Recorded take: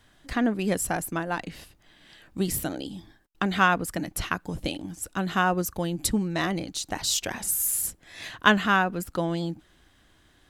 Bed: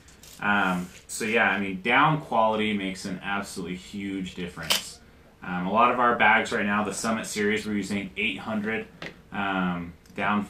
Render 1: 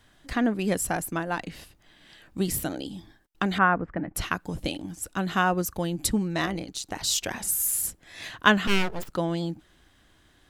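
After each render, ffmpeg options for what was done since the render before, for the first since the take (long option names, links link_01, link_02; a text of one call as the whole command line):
ffmpeg -i in.wav -filter_complex "[0:a]asettb=1/sr,asplit=3[link_01][link_02][link_03];[link_01]atrim=end=3.584[link_04];[link_02]atrim=start=3.58:end=4.15,asetpts=PTS-STARTPTS,afade=type=in:duration=0.004:curve=qsin,afade=type=out:start_time=0.566:duration=0.004:curve=qsin,lowpass=frequency=1900:width=0.5412,lowpass=frequency=1900:width=1.3066[link_05];[link_03]atrim=start=4.146[link_06];[link_04][link_05]acrossfade=duration=0.004:curve1=hsin:curve2=qsin[link_07];[link_07][link_06]acrossfade=duration=0.004:curve1=qsin:curve2=hsin,asettb=1/sr,asplit=3[link_08][link_09][link_10];[link_08]atrim=end=6.464[link_11];[link_09]atrim=start=6.46:end=7.01,asetpts=PTS-STARTPTS,afade=type=in:duration=0.004:curve=qsin,afade=type=out:start_time=0.546:duration=0.004:curve=qsin,tremolo=f=130:d=0.571[link_12];[link_10]atrim=start=7.006[link_13];[link_11][link_12]acrossfade=duration=0.004:curve1=hsin:curve2=qsin[link_14];[link_14][link_13]acrossfade=duration=0.004:curve1=qsin:curve2=hsin,asettb=1/sr,asplit=3[link_15][link_16][link_17];[link_15]atrim=end=8.674[link_18];[link_16]atrim=start=8.67:end=9.13,asetpts=PTS-STARTPTS,afade=type=in:duration=0.004:curve=qsin,afade=type=out:start_time=0.456:duration=0.004:curve=qsin,aeval=exprs='abs(val(0))':channel_layout=same[link_19];[link_17]atrim=start=9.126[link_20];[link_18][link_19]acrossfade=duration=0.004:curve1=hsin:curve2=qsin[link_21];[link_21][link_20]acrossfade=duration=0.004:curve1=qsin:curve2=hsin" out.wav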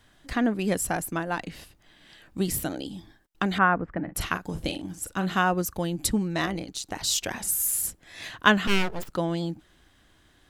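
ffmpeg -i in.wav -filter_complex "[0:a]asettb=1/sr,asplit=3[link_01][link_02][link_03];[link_01]atrim=end=4.044[link_04];[link_02]atrim=start=4.04:end=5.39,asetpts=PTS-STARTPTS,afade=type=in:duration=0.004:curve=qsin,afade=type=out:start_time=1.346:duration=0.004:curve=qsin,asplit=2[link_05][link_06];[link_06]adelay=43,volume=-10dB[link_07];[link_05][link_07]amix=inputs=2:normalize=0,atrim=end_sample=59535[link_08];[link_03]atrim=start=5.386[link_09];[link_04][link_08]acrossfade=duration=0.004:curve1=hsin:curve2=qsin[link_10];[link_10][link_09]acrossfade=duration=0.004:curve1=qsin:curve2=hsin" out.wav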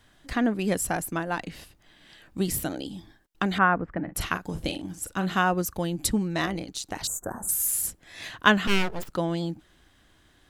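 ffmpeg -i in.wav -filter_complex "[0:a]asettb=1/sr,asplit=3[link_01][link_02][link_03];[link_01]atrim=end=7.074[link_04];[link_02]atrim=start=7.07:end=7.49,asetpts=PTS-STARTPTS,afade=type=in:duration=0.004:curve=qsin,afade=type=out:start_time=0.416:duration=0.004:curve=qsin,asuperstop=centerf=3400:order=12:qfactor=0.58[link_05];[link_03]atrim=start=7.486[link_06];[link_04][link_05]acrossfade=duration=0.004:curve1=hsin:curve2=qsin[link_07];[link_07][link_06]acrossfade=duration=0.004:curve1=qsin:curve2=hsin" out.wav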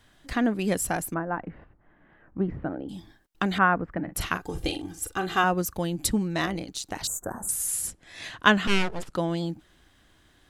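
ffmpeg -i in.wav -filter_complex "[0:a]asettb=1/sr,asplit=3[link_01][link_02][link_03];[link_01]atrim=end=1.144[link_04];[link_02]atrim=start=1.14:end=2.89,asetpts=PTS-STARTPTS,afade=type=in:duration=0.004:curve=qsin,afade=type=out:start_time=1.746:duration=0.004:curve=qsin,lowpass=frequency=1600:width=0.5412,lowpass=frequency=1600:width=1.3066[link_05];[link_03]atrim=start=2.886[link_06];[link_04][link_05]acrossfade=duration=0.004:curve1=hsin:curve2=qsin[link_07];[link_07][link_06]acrossfade=duration=0.004:curve1=qsin:curve2=hsin,asettb=1/sr,asplit=3[link_08][link_09][link_10];[link_08]atrim=end=4.404[link_11];[link_09]atrim=start=4.4:end=5.44,asetpts=PTS-STARTPTS,afade=type=in:duration=0.004:curve=qsin,afade=type=out:start_time=1.036:duration=0.004:curve=qsin,aecho=1:1:2.5:0.65,atrim=end_sample=45864[link_12];[link_10]atrim=start=5.436[link_13];[link_11][link_12]acrossfade=duration=0.004:curve1=hsin:curve2=qsin[link_14];[link_14][link_13]acrossfade=duration=0.004:curve1=qsin:curve2=hsin,asettb=1/sr,asplit=3[link_15][link_16][link_17];[link_15]atrim=end=7.484[link_18];[link_16]atrim=start=7.48:end=9.15,asetpts=PTS-STARTPTS,afade=type=in:duration=0.004:curve=qsin,afade=type=out:start_time=1.666:duration=0.004:curve=qsin,lowpass=frequency=11000:width=0.5412,lowpass=frequency=11000:width=1.3066[link_19];[link_17]atrim=start=9.146[link_20];[link_18][link_19]acrossfade=duration=0.004:curve1=hsin:curve2=qsin[link_21];[link_21][link_20]acrossfade=duration=0.004:curve1=qsin:curve2=hsin" out.wav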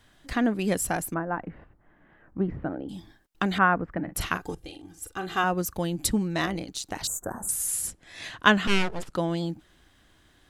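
ffmpeg -i in.wav -filter_complex "[0:a]asplit=2[link_01][link_02];[link_01]atrim=end=4.55,asetpts=PTS-STARTPTS,afade=type=out:start_time=4.546:duration=0.004:curve=hsin:silence=0.11885[link_03];[link_02]atrim=start=4.55,asetpts=PTS-STARTPTS,afade=type=in:duration=1.2:silence=0.11885[link_04];[link_03][link_04]concat=n=2:v=0:a=1" out.wav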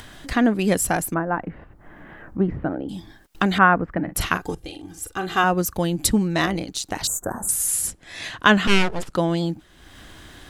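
ffmpeg -i in.wav -af "acompressor=mode=upward:threshold=-38dB:ratio=2.5,alimiter=level_in=6dB:limit=-1dB:release=50:level=0:latency=1" out.wav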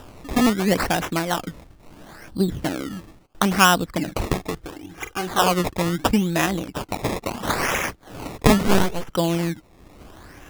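ffmpeg -i in.wav -af "acrusher=samples=20:mix=1:aa=0.000001:lfo=1:lforange=20:lforate=0.74" out.wav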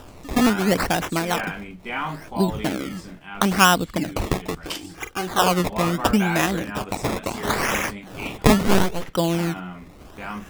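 ffmpeg -i in.wav -i bed.wav -filter_complex "[1:a]volume=-8dB[link_01];[0:a][link_01]amix=inputs=2:normalize=0" out.wav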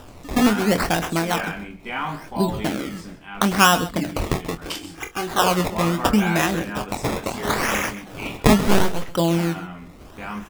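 ffmpeg -i in.wav -filter_complex "[0:a]asplit=2[link_01][link_02];[link_02]adelay=24,volume=-9.5dB[link_03];[link_01][link_03]amix=inputs=2:normalize=0,aecho=1:1:132:0.168" out.wav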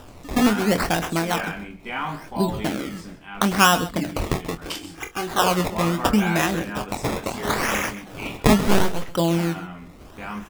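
ffmpeg -i in.wav -af "volume=-1dB,alimiter=limit=-3dB:level=0:latency=1" out.wav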